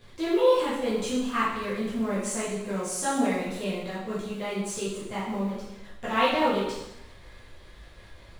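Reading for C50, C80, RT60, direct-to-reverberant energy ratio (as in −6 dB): 0.0 dB, 4.0 dB, 0.95 s, −10.5 dB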